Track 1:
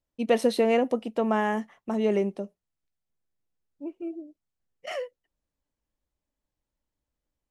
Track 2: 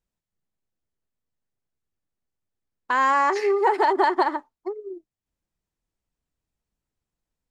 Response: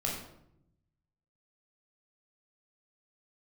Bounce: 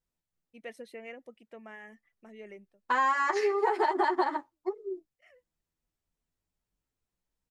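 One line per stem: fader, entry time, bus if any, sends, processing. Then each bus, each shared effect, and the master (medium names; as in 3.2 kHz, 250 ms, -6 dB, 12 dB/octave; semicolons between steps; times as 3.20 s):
-19.5 dB, 0.35 s, no send, reverb removal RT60 0.57 s; graphic EQ 250/1000/2000/4000 Hz -5/-8/+12/-6 dB; auto duck -20 dB, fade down 0.30 s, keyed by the second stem
+0.5 dB, 0.00 s, no send, endless flanger 9.7 ms +0.34 Hz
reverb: none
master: compression 4:1, threshold -23 dBFS, peak gain reduction 6 dB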